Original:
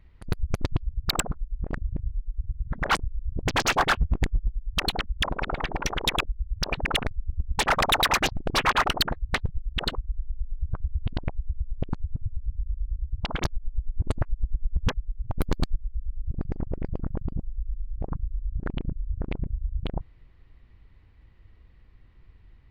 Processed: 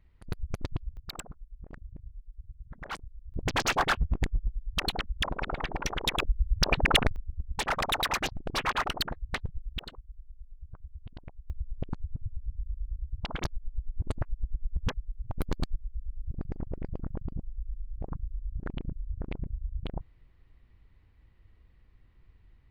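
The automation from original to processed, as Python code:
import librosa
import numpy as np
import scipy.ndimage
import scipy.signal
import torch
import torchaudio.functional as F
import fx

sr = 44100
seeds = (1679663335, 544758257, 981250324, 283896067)

y = fx.gain(x, sr, db=fx.steps((0.0, -7.5), (0.97, -15.0), (3.34, -4.0), (6.21, 3.0), (7.16, -7.0), (9.79, -16.5), (11.5, -5.5)))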